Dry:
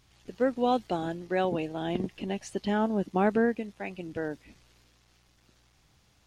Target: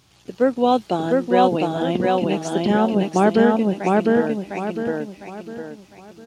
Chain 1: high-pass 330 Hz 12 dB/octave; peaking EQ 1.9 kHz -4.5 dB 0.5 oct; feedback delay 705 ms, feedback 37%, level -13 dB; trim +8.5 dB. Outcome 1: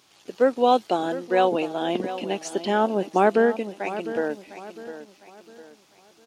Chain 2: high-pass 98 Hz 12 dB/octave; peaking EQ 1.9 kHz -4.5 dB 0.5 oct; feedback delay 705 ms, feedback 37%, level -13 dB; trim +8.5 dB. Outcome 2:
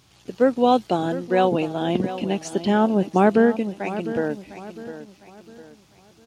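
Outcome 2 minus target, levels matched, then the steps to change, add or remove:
echo-to-direct -11.5 dB
change: feedback delay 705 ms, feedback 37%, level -1.5 dB

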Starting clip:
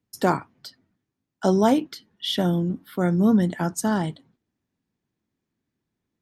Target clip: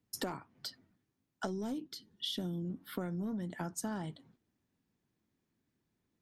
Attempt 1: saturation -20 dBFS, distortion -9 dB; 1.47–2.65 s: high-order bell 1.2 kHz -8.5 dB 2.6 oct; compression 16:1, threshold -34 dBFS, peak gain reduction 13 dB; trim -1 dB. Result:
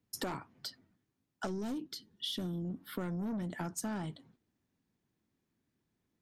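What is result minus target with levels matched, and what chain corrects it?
saturation: distortion +9 dB
saturation -11.5 dBFS, distortion -18 dB; 1.47–2.65 s: high-order bell 1.2 kHz -8.5 dB 2.6 oct; compression 16:1, threshold -34 dBFS, peak gain reduction 18 dB; trim -1 dB

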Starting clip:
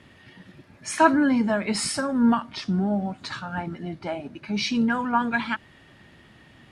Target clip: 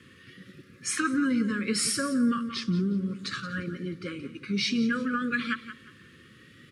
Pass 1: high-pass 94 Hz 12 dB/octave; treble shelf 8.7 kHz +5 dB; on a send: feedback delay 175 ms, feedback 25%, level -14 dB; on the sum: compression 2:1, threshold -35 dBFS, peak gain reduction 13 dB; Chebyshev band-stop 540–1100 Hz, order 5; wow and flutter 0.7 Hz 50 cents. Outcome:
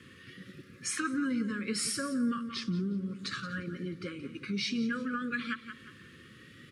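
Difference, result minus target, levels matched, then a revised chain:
compression: peak gain reduction +6 dB
high-pass 94 Hz 12 dB/octave; treble shelf 8.7 kHz +5 dB; on a send: feedback delay 175 ms, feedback 25%, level -14 dB; on the sum: compression 2:1, threshold -23.5 dBFS, peak gain reduction 7 dB; Chebyshev band-stop 540–1100 Hz, order 5; wow and flutter 0.7 Hz 50 cents

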